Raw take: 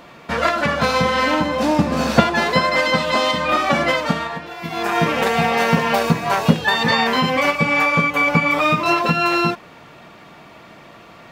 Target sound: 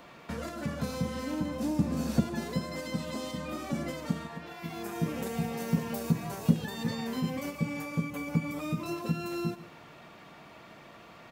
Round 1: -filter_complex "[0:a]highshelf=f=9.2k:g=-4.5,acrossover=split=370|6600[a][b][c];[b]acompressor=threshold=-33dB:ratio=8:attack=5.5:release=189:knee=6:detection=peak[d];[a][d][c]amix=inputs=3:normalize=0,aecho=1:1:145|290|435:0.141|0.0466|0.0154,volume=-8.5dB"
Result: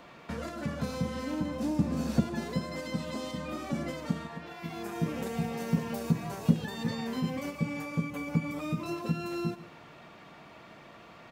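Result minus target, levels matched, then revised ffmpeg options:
8000 Hz band -2.5 dB
-filter_complex "[0:a]highshelf=f=9.2k:g=3,acrossover=split=370|6600[a][b][c];[b]acompressor=threshold=-33dB:ratio=8:attack=5.5:release=189:knee=6:detection=peak[d];[a][d][c]amix=inputs=3:normalize=0,aecho=1:1:145|290|435:0.141|0.0466|0.0154,volume=-8.5dB"

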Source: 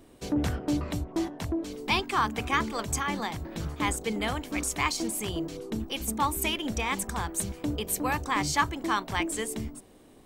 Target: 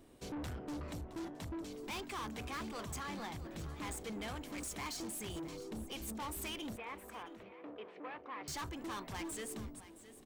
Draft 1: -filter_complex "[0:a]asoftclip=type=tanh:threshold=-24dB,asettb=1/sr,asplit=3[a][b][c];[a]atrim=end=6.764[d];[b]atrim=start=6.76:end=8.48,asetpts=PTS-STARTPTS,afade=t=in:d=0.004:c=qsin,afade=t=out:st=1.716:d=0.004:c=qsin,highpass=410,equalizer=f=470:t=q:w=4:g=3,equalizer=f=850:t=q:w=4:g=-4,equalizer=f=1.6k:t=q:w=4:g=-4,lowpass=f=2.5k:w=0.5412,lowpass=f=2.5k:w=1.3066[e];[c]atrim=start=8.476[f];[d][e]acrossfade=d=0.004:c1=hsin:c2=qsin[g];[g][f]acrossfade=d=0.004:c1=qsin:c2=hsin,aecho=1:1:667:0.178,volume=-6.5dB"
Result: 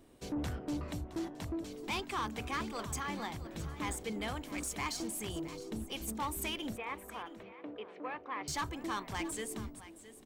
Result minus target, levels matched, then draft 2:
soft clip: distortion -6 dB
-filter_complex "[0:a]asoftclip=type=tanh:threshold=-33dB,asettb=1/sr,asplit=3[a][b][c];[a]atrim=end=6.764[d];[b]atrim=start=6.76:end=8.48,asetpts=PTS-STARTPTS,afade=t=in:d=0.004:c=qsin,afade=t=out:st=1.716:d=0.004:c=qsin,highpass=410,equalizer=f=470:t=q:w=4:g=3,equalizer=f=850:t=q:w=4:g=-4,equalizer=f=1.6k:t=q:w=4:g=-4,lowpass=f=2.5k:w=0.5412,lowpass=f=2.5k:w=1.3066[e];[c]atrim=start=8.476[f];[d][e]acrossfade=d=0.004:c1=hsin:c2=qsin[g];[g][f]acrossfade=d=0.004:c1=qsin:c2=hsin,aecho=1:1:667:0.178,volume=-6.5dB"

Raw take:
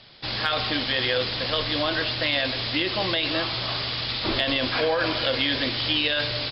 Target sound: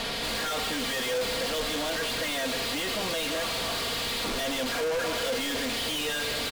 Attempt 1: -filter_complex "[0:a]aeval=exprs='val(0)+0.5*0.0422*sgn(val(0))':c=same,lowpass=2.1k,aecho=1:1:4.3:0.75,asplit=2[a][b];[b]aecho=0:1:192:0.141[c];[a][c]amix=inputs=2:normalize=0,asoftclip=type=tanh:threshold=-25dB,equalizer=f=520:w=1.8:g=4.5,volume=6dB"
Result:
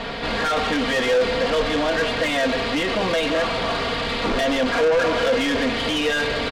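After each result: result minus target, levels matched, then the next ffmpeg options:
4000 Hz band -4.5 dB; soft clip: distortion -5 dB
-filter_complex "[0:a]aeval=exprs='val(0)+0.5*0.0422*sgn(val(0))':c=same,lowpass=4.3k,aecho=1:1:4.3:0.75,asplit=2[a][b];[b]aecho=0:1:192:0.141[c];[a][c]amix=inputs=2:normalize=0,asoftclip=type=tanh:threshold=-25dB,equalizer=f=520:w=1.8:g=4.5,volume=6dB"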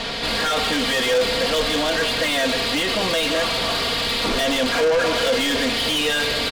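soft clip: distortion -4 dB
-filter_complex "[0:a]aeval=exprs='val(0)+0.5*0.0422*sgn(val(0))':c=same,lowpass=4.3k,aecho=1:1:4.3:0.75,asplit=2[a][b];[b]aecho=0:1:192:0.141[c];[a][c]amix=inputs=2:normalize=0,asoftclip=type=tanh:threshold=-36dB,equalizer=f=520:w=1.8:g=4.5,volume=6dB"

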